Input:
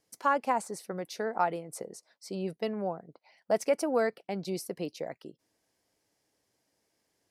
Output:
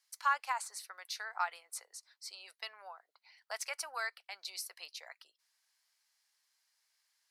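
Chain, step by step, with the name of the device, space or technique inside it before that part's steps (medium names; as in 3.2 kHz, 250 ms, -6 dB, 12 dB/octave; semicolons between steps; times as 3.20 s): headphones lying on a table (high-pass 1.1 kHz 24 dB/octave; peaking EQ 4.2 kHz +5.5 dB 0.34 oct)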